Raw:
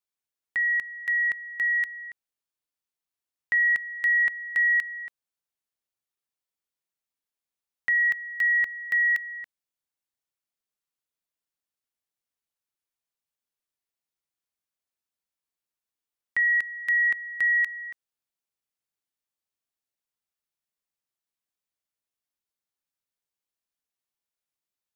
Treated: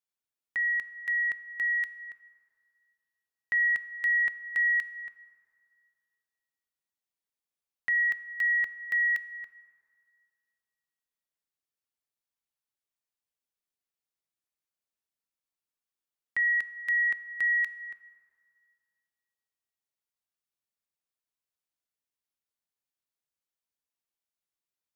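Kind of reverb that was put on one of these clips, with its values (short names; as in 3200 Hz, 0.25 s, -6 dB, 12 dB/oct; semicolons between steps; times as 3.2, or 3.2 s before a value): plate-style reverb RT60 2.4 s, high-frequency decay 0.45×, pre-delay 0 ms, DRR 13.5 dB; gain -4 dB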